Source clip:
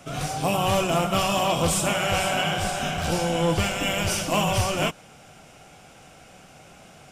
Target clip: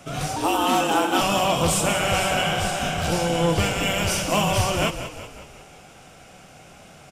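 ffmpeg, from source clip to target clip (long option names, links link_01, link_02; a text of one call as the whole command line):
ffmpeg -i in.wav -filter_complex "[0:a]asettb=1/sr,asplit=3[link_01][link_02][link_03];[link_01]atrim=end=0.364[link_04];[link_02]atrim=start=0.36:end=1.21,asetpts=PTS-STARTPTS,afade=type=in:duration=0.004:curve=qsin,afade=type=out:start_time=0.846:duration=0.004:curve=qsin,afreqshift=150[link_05];[link_03]atrim=start=1.206[link_06];[link_04][link_05]acrossfade=duration=0.004:curve1=hsin:curve2=qsin[link_07];[link_07][link_06]acrossfade=duration=0.004:curve1=qsin:curve2=hsin,asplit=7[link_08][link_09][link_10][link_11][link_12][link_13][link_14];[link_09]adelay=185,afreqshift=-32,volume=-11dB[link_15];[link_10]adelay=370,afreqshift=-64,volume=-16.5dB[link_16];[link_11]adelay=555,afreqshift=-96,volume=-22dB[link_17];[link_12]adelay=740,afreqshift=-128,volume=-27.5dB[link_18];[link_13]adelay=925,afreqshift=-160,volume=-33.1dB[link_19];[link_14]adelay=1110,afreqshift=-192,volume=-38.6dB[link_20];[link_08][link_15][link_16][link_17][link_18][link_19][link_20]amix=inputs=7:normalize=0,volume=1.5dB" out.wav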